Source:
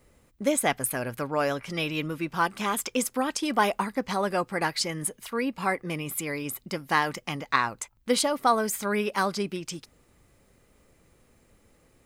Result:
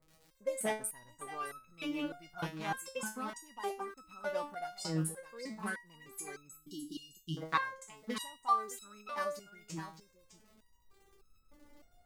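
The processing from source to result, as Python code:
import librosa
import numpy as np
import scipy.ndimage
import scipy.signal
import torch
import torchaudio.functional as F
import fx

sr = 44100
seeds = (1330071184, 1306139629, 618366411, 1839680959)

p1 = fx.wiener(x, sr, points=15)
p2 = fx.recorder_agc(p1, sr, target_db=-14.5, rise_db_per_s=5.2, max_gain_db=30)
p3 = p2 + fx.echo_single(p2, sr, ms=612, db=-12.0, dry=0)
p4 = fx.dmg_crackle(p3, sr, seeds[0], per_s=81.0, level_db=-38.0)
p5 = fx.brickwall_bandstop(p4, sr, low_hz=430.0, high_hz=2800.0, at=(6.57, 7.37))
p6 = fx.resonator_held(p5, sr, hz=3.3, low_hz=160.0, high_hz=1300.0)
y = F.gain(torch.from_numpy(p6), 3.5).numpy()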